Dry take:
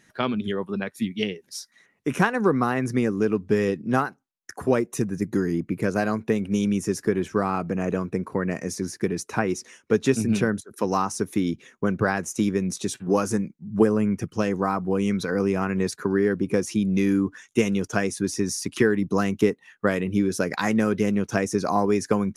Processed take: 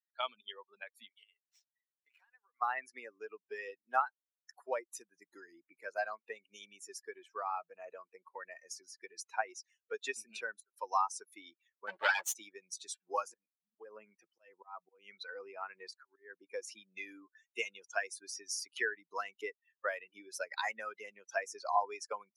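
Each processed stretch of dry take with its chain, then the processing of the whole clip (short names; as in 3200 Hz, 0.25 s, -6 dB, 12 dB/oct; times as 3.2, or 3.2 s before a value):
1.09–2.62 median filter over 9 samples + HPF 1400 Hz 6 dB/oct + compressor 8:1, threshold -39 dBFS
11.87–12.35 minimum comb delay 9.7 ms + HPF 81 Hz + sample leveller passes 2
13.28–16.37 high shelf 6000 Hz -9 dB + auto swell 0.209 s
whole clip: per-bin expansion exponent 2; HPF 660 Hz 24 dB/oct; high shelf 9300 Hz -8.5 dB; gain -2 dB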